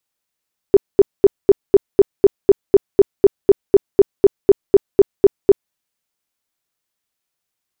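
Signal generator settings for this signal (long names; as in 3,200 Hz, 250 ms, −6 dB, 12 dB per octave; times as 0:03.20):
tone bursts 397 Hz, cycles 11, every 0.25 s, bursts 20, −3.5 dBFS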